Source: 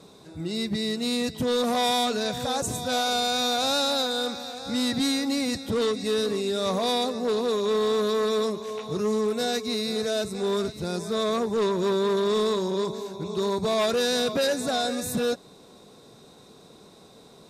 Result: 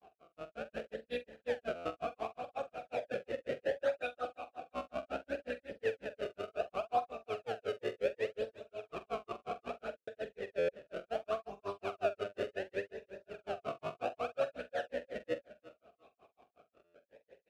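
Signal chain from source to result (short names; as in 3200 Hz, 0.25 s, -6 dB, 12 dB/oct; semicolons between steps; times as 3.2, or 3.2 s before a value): octaver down 2 oct, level +4 dB; decimation with a swept rate 31×, swing 160% 0.67 Hz; grains 0.11 s, grains 5.5/s, spray 16 ms, pitch spread up and down by 0 st; wow and flutter 26 cents; doubler 45 ms -13 dB; on a send: feedback echo 0.351 s, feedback 18%, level -16 dB; on the sum: stuck buffer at 1.75/9.97/10.58/16.84, samples 512; vowel sweep a-e 0.43 Hz; gain +4 dB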